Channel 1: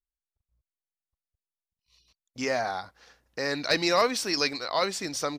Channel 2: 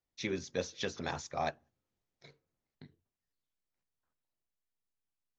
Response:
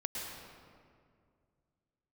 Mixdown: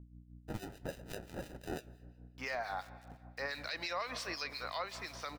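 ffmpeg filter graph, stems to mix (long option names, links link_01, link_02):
-filter_complex "[0:a]acrossover=split=590 4200:gain=0.158 1 0.178[link_01][link_02][link_03];[link_01][link_02][link_03]amix=inputs=3:normalize=0,aeval=exprs='val(0)*gte(abs(val(0)),0.00335)':channel_layout=same,aeval=exprs='val(0)+0.00398*(sin(2*PI*60*n/s)+sin(2*PI*2*60*n/s)/2+sin(2*PI*3*60*n/s)/3+sin(2*PI*4*60*n/s)/4+sin(2*PI*5*60*n/s)/5)':channel_layout=same,volume=-3dB,asplit=2[link_04][link_05];[link_05]volume=-15.5dB[link_06];[1:a]equalizer=frequency=2700:width=0.76:gain=11,acrusher=samples=40:mix=1:aa=0.000001,flanger=delay=6.2:depth=3.7:regen=-76:speed=1.4:shape=triangular,adelay=300,volume=-2.5dB,asplit=2[link_07][link_08];[link_08]volume=-21.5dB[link_09];[2:a]atrim=start_sample=2205[link_10];[link_06][link_09]amix=inputs=2:normalize=0[link_11];[link_11][link_10]afir=irnorm=-1:irlink=0[link_12];[link_04][link_07][link_12]amix=inputs=3:normalize=0,acrossover=split=1900[link_13][link_14];[link_13]aeval=exprs='val(0)*(1-0.7/2+0.7/2*cos(2*PI*5.8*n/s))':channel_layout=same[link_15];[link_14]aeval=exprs='val(0)*(1-0.7/2-0.7/2*cos(2*PI*5.8*n/s))':channel_layout=same[link_16];[link_15][link_16]amix=inputs=2:normalize=0,alimiter=level_in=4dB:limit=-24dB:level=0:latency=1:release=132,volume=-4dB"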